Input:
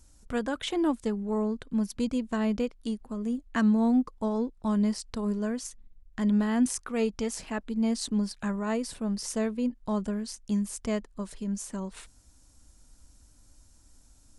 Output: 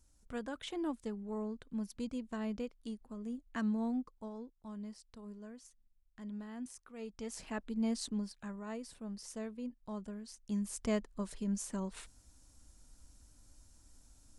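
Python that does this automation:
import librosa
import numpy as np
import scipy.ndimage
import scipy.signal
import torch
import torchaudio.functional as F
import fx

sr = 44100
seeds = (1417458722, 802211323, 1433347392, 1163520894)

y = fx.gain(x, sr, db=fx.line((3.81, -11.0), (4.56, -19.5), (6.97, -19.5), (7.44, -7.0), (8.0, -7.0), (8.41, -13.5), (10.24, -13.5), (10.83, -3.5)))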